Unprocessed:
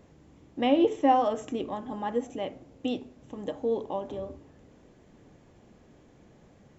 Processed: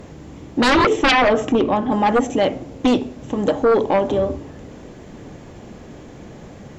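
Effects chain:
sine wavefolder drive 14 dB, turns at −10.5 dBFS
0:01.11–0:01.92: high-frequency loss of the air 100 metres

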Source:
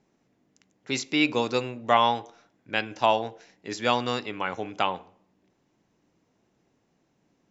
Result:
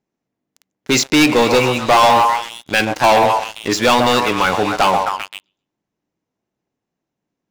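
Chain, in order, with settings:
echo through a band-pass that steps 131 ms, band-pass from 760 Hz, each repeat 0.7 octaves, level −6 dB
leveller curve on the samples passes 5
level −1 dB

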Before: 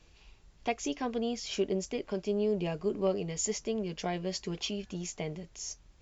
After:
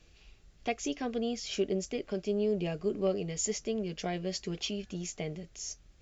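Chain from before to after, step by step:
parametric band 950 Hz −10.5 dB 0.33 octaves

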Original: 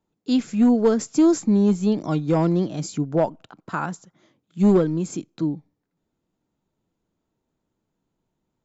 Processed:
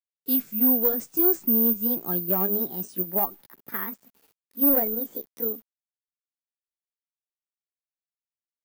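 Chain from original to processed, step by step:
pitch glide at a constant tempo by +10.5 semitones starting unshifted
bad sample-rate conversion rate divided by 3×, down filtered, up zero stuff
bit reduction 8 bits
level −8 dB

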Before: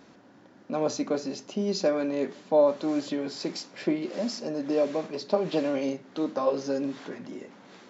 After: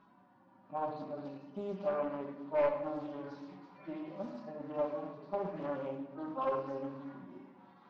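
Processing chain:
harmonic-percussive split with one part muted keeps harmonic
graphic EQ with 10 bands 250 Hz −6 dB, 500 Hz −6 dB, 1,000 Hz +11 dB, 2,000 Hz −5 dB
hard clipping −19 dBFS, distortion −17 dB
high-frequency loss of the air 310 metres
rectangular room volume 390 cubic metres, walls mixed, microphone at 1.1 metres
highs frequency-modulated by the lows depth 0.33 ms
level −7.5 dB

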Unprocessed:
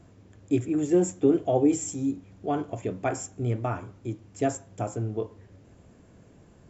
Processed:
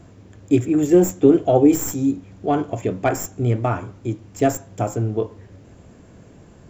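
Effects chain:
stylus tracing distortion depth 0.053 ms
level +8 dB

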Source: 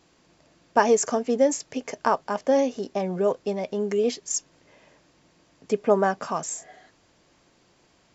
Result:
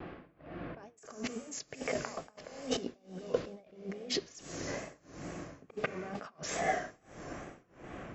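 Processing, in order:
low-pass that shuts in the quiet parts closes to 2,600 Hz, open at −17.5 dBFS
notch filter 930 Hz, Q 6.6
low-pass that shuts in the quiet parts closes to 2,300 Hz, open at −19 dBFS
high-shelf EQ 6,300 Hz −11.5 dB
compressor whose output falls as the input rises −43 dBFS, ratio −1
four-comb reverb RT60 3.9 s, combs from 28 ms, DRR 11.5 dB
amplitude tremolo 1.5 Hz, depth 96%
pitch vibrato 2.3 Hz 70 cents
level +5.5 dB

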